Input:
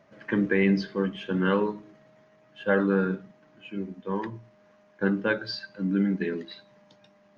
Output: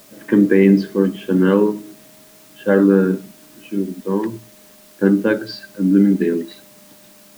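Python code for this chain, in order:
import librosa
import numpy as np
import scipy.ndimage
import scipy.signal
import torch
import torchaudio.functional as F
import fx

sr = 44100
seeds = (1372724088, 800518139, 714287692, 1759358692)

p1 = fx.peak_eq(x, sr, hz=300.0, db=12.5, octaves=1.6)
p2 = fx.quant_dither(p1, sr, seeds[0], bits=6, dither='triangular')
y = p1 + (p2 * librosa.db_to_amplitude(-12.0))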